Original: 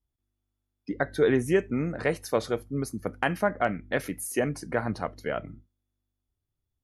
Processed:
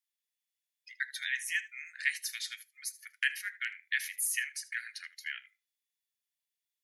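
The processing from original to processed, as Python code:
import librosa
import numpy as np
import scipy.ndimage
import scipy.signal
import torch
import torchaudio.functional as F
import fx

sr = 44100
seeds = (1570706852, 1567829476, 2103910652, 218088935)

y = scipy.signal.sosfilt(scipy.signal.butter(12, 1700.0, 'highpass', fs=sr, output='sos'), x)
y = y + 10.0 ** (-18.5 / 20.0) * np.pad(y, (int(78 * sr / 1000.0), 0))[:len(y)]
y = y * 10.0 ** (3.5 / 20.0)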